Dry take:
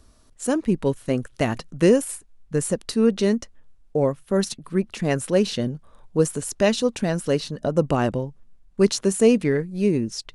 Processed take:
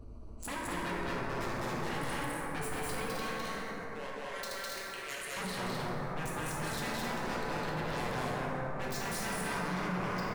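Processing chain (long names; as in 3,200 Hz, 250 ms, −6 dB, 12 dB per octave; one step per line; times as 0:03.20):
adaptive Wiener filter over 25 samples
0:03.04–0:05.37: Chebyshev high-pass filter 2,200 Hz, order 2
brickwall limiter −16 dBFS, peak gain reduction 11 dB
flanger 0.4 Hz, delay 8.6 ms, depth 4.9 ms, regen +73%
wave folding −35 dBFS
loudspeakers that aren't time-aligned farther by 71 metres −1 dB, 90 metres −5 dB
dense smooth reverb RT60 3.9 s, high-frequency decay 0.3×, DRR −4.5 dB
envelope flattener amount 50%
level −5.5 dB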